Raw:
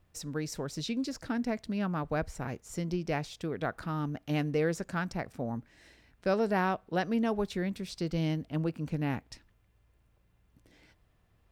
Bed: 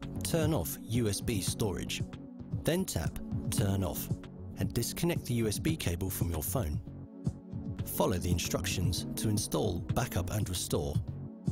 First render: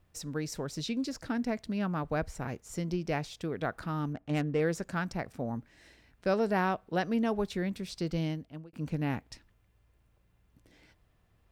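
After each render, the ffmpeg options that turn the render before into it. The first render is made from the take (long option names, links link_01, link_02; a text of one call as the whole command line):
ffmpeg -i in.wav -filter_complex "[0:a]asettb=1/sr,asplit=3[link_01][link_02][link_03];[link_01]atrim=end=4.134[link_04];[link_02]atrim=start=4.13:end=4.6,asetpts=PTS-STARTPTS,afade=type=in:duration=0.004:curve=qsin,afade=type=out:start_time=0.466:duration=0.004:curve=qsin,adynamicsmooth=sensitivity=6.5:basefreq=1500[link_05];[link_03]atrim=start=4.596[link_06];[link_04][link_05]acrossfade=duration=0.004:curve1=hsin:curve2=qsin[link_07];[link_07][link_06]acrossfade=duration=0.004:curve1=qsin:curve2=hsin,asplit=2[link_08][link_09];[link_08]atrim=end=8.73,asetpts=PTS-STARTPTS,afade=type=out:start_time=8.13:duration=0.6[link_10];[link_09]atrim=start=8.73,asetpts=PTS-STARTPTS,afade=type=in:duration=0.004:curve=hsin[link_11];[link_10][link_11]concat=n=2:v=0:a=1" out.wav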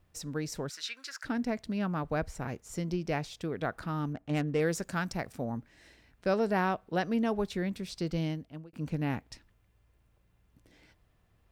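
ffmpeg -i in.wav -filter_complex "[0:a]asplit=3[link_01][link_02][link_03];[link_01]afade=type=out:start_time=0.69:duration=0.02[link_04];[link_02]highpass=frequency=1500:width_type=q:width=4.7,afade=type=in:start_time=0.69:duration=0.02,afade=type=out:start_time=1.24:duration=0.02[link_05];[link_03]afade=type=in:start_time=1.24:duration=0.02[link_06];[link_04][link_05][link_06]amix=inputs=3:normalize=0,asettb=1/sr,asplit=3[link_07][link_08][link_09];[link_07]atrim=end=4.484[link_10];[link_08]atrim=start=4.48:end=5.45,asetpts=PTS-STARTPTS,afade=type=in:duration=0.004:curve=qsin,afade=type=out:start_time=0.966:duration=0.004:curve=qsin,highshelf=frequency=4100:gain=7.5[link_11];[link_09]atrim=start=5.446[link_12];[link_10][link_11]acrossfade=duration=0.004:curve1=hsin:curve2=qsin[link_13];[link_13][link_12]acrossfade=duration=0.004:curve1=qsin:curve2=hsin" out.wav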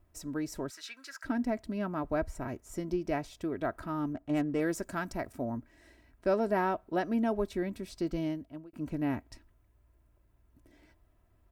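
ffmpeg -i in.wav -af "equalizer=frequency=4000:width_type=o:width=2.1:gain=-8.5,aecho=1:1:3.1:0.57" out.wav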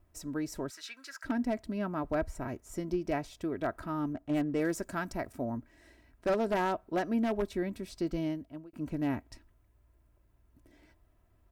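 ffmpeg -i in.wav -af "aeval=exprs='0.0794*(abs(mod(val(0)/0.0794+3,4)-2)-1)':channel_layout=same" out.wav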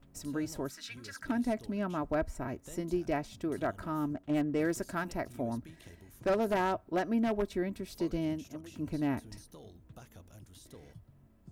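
ffmpeg -i in.wav -i bed.wav -filter_complex "[1:a]volume=-21dB[link_01];[0:a][link_01]amix=inputs=2:normalize=0" out.wav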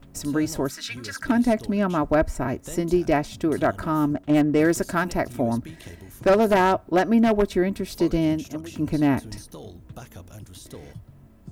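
ffmpeg -i in.wav -af "volume=11.5dB" out.wav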